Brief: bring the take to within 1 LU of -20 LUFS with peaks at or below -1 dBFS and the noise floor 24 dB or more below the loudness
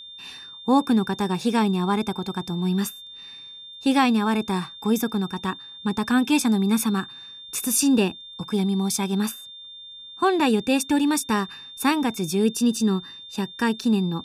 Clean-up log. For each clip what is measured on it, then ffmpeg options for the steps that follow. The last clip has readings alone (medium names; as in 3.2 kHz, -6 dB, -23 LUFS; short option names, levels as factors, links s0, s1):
steady tone 3.6 kHz; tone level -39 dBFS; loudness -23.5 LUFS; peak level -8.0 dBFS; loudness target -20.0 LUFS
-> -af "bandreject=f=3600:w=30"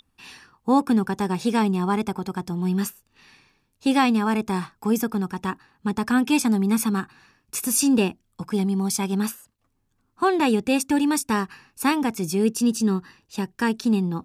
steady tone not found; loudness -23.5 LUFS; peak level -8.0 dBFS; loudness target -20.0 LUFS
-> -af "volume=1.5"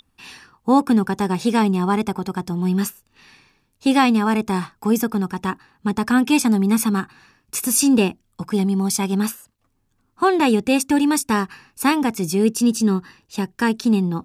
loudness -20.0 LUFS; peak level -4.5 dBFS; noise floor -67 dBFS